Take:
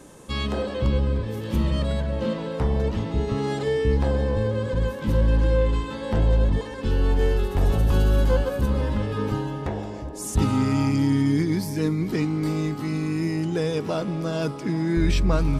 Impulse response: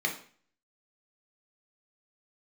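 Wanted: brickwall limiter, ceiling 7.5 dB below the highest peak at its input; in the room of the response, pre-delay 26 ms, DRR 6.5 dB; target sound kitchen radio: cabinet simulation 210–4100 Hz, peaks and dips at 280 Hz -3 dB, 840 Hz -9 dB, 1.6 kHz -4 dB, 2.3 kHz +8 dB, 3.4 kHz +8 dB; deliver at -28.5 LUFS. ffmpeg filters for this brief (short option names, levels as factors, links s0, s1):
-filter_complex "[0:a]alimiter=limit=0.168:level=0:latency=1,asplit=2[s0][s1];[1:a]atrim=start_sample=2205,adelay=26[s2];[s1][s2]afir=irnorm=-1:irlink=0,volume=0.188[s3];[s0][s3]amix=inputs=2:normalize=0,highpass=210,equalizer=f=280:t=q:w=4:g=-3,equalizer=f=840:t=q:w=4:g=-9,equalizer=f=1600:t=q:w=4:g=-4,equalizer=f=2300:t=q:w=4:g=8,equalizer=f=3400:t=q:w=4:g=8,lowpass=f=4100:w=0.5412,lowpass=f=4100:w=1.3066"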